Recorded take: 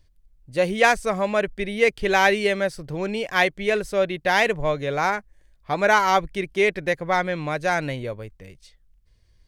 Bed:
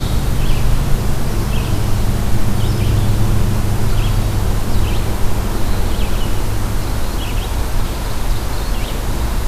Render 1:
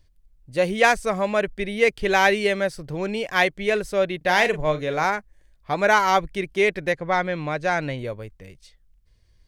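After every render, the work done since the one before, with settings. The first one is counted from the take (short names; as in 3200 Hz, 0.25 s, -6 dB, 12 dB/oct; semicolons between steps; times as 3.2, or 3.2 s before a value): 4.17–5.05 doubler 39 ms -10.5 dB; 6.92–7.99 air absorption 58 m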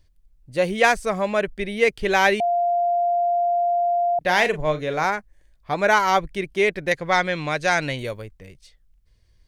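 2.4–4.19 bleep 697 Hz -17.5 dBFS; 6.91–8.22 high shelf 2200 Hz +11.5 dB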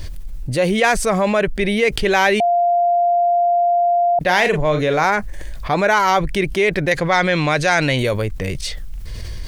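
fast leveller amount 70%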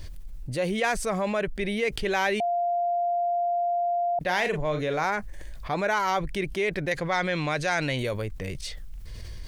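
gain -10 dB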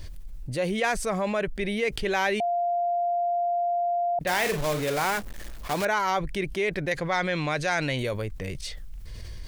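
4.27–5.87 block floating point 3-bit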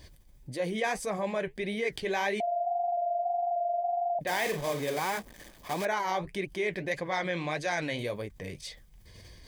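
notch comb 1400 Hz; flange 1.7 Hz, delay 2.7 ms, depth 9.8 ms, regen -55%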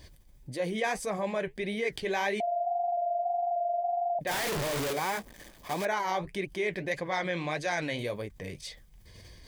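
4.31–4.93 infinite clipping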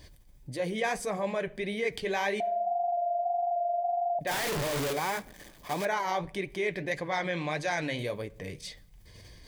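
shoebox room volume 2000 m³, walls furnished, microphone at 0.37 m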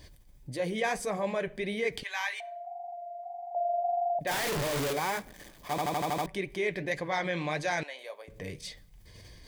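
2.03–3.55 HPF 970 Hz 24 dB/oct; 5.7 stutter in place 0.08 s, 7 plays; 7.83–8.28 ladder high-pass 550 Hz, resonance 35%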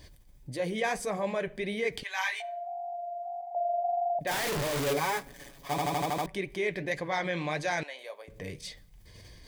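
2.16–3.41 doubler 16 ms -2 dB; 4.86–6.06 comb 7.2 ms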